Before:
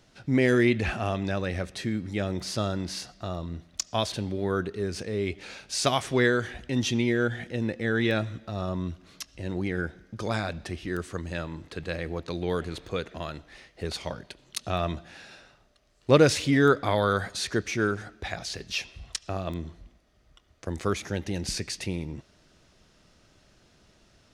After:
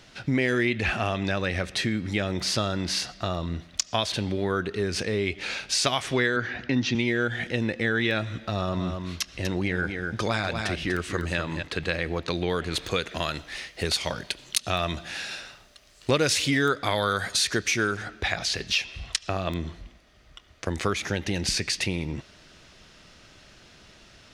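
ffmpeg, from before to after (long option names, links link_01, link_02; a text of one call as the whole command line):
ffmpeg -i in.wav -filter_complex "[0:a]asettb=1/sr,asplit=3[link_01][link_02][link_03];[link_01]atrim=end=6.364[link_04];[link_02]atrim=start=6.36:end=6.95,asetpts=PTS-STARTPTS,afade=type=in:duration=0.004:curve=qsin,afade=type=out:start_time=0.586:duration=0.004:curve=qsin,highpass=110,equalizer=frequency=120:width_type=q:width=4:gain=5,equalizer=frequency=260:width_type=q:width=4:gain=6,equalizer=frequency=1500:width_type=q:width=4:gain=4,equalizer=frequency=3200:width_type=q:width=4:gain=-8,lowpass=frequency=5400:width=0.5412,lowpass=frequency=5400:width=1.3066[link_05];[link_03]atrim=start=6.946[link_06];[link_04][link_05]acrossfade=duration=0.004:curve1=hsin:curve2=qsin[link_07];[link_07][link_06]acrossfade=duration=0.004:curve1=qsin:curve2=hsin,asettb=1/sr,asplit=3[link_08][link_09][link_10];[link_08]atrim=end=8.414[link_11];[link_09]atrim=start=8.41:end=11.63,asetpts=PTS-STARTPTS,afade=type=in:duration=0.004:curve=qsin,afade=type=out:start_time=3.216:duration=0.004:curve=qsin,aecho=1:1:245:0.376,atrim=end_sample=142002[link_12];[link_10]atrim=start=11.626[link_13];[link_11][link_12]acrossfade=duration=0.004:curve1=hsin:curve2=qsin[link_14];[link_14][link_13]acrossfade=duration=0.004:curve1=qsin:curve2=hsin,asettb=1/sr,asplit=3[link_15][link_16][link_17];[link_15]atrim=end=12.734[link_18];[link_16]atrim=start=12.73:end=17.97,asetpts=PTS-STARTPTS,afade=type=in:duration=0.004:curve=qsin,afade=type=out:start_time=5.236:duration=0.004:curve=qsin,highshelf=frequency=5400:gain=11.5[link_19];[link_17]atrim=start=17.966[link_20];[link_18][link_19]acrossfade=duration=0.004:curve1=hsin:curve2=qsin[link_21];[link_21][link_20]acrossfade=duration=0.004:curve1=qsin:curve2=hsin,equalizer=frequency=2600:width=0.53:gain=7,acompressor=threshold=-29dB:ratio=3,volume=5.5dB" out.wav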